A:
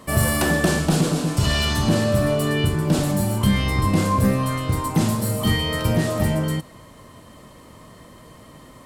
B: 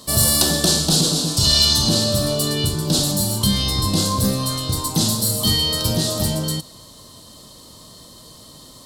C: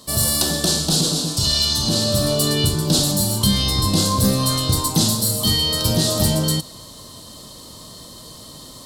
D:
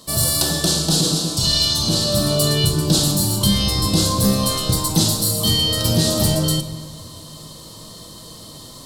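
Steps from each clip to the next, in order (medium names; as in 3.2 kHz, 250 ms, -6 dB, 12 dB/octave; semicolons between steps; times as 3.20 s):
resonant high shelf 3 kHz +10.5 dB, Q 3; trim -1.5 dB
gain riding 0.5 s
simulated room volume 1300 m³, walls mixed, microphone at 0.69 m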